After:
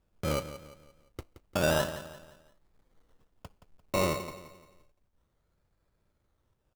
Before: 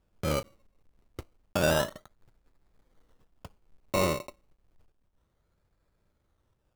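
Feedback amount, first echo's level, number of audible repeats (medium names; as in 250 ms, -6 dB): 40%, -13.0 dB, 3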